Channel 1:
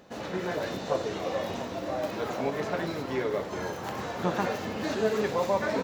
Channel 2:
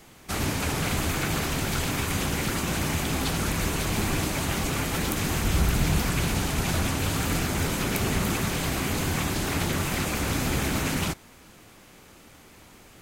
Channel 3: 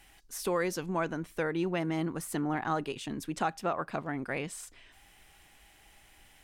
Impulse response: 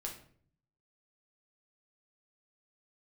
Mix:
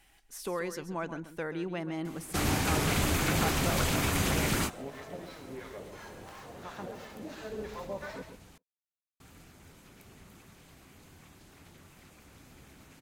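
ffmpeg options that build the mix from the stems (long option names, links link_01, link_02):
-filter_complex "[0:a]acrossover=split=740[link_01][link_02];[link_01]aeval=exprs='val(0)*(1-1/2+1/2*cos(2*PI*2.9*n/s))':channel_layout=same[link_03];[link_02]aeval=exprs='val(0)*(1-1/2-1/2*cos(2*PI*2.9*n/s))':channel_layout=same[link_04];[link_03][link_04]amix=inputs=2:normalize=0,adelay=2400,volume=-8.5dB,asplit=2[link_05][link_06];[link_06]volume=-8.5dB[link_07];[1:a]adelay=2050,volume=-1.5dB,asplit=3[link_08][link_09][link_10];[link_08]atrim=end=8.58,asetpts=PTS-STARTPTS,afade=type=out:start_time=8.576:duration=0.004:curve=hsin[link_11];[link_09]atrim=start=8.58:end=9.2,asetpts=PTS-STARTPTS,volume=0[link_12];[link_10]atrim=start=9.2,asetpts=PTS-STARTPTS,afade=type=in:duration=0.004:curve=hsin[link_13];[link_11][link_12][link_13]concat=n=3:v=0:a=1[link_14];[2:a]volume=-4.5dB,asplit=3[link_15][link_16][link_17];[link_16]volume=-12dB[link_18];[link_17]apad=whole_len=664342[link_19];[link_14][link_19]sidechaingate=range=-27dB:threshold=-50dB:ratio=16:detection=peak[link_20];[link_07][link_18]amix=inputs=2:normalize=0,aecho=0:1:134|268|402:1|0.16|0.0256[link_21];[link_05][link_20][link_15][link_21]amix=inputs=4:normalize=0"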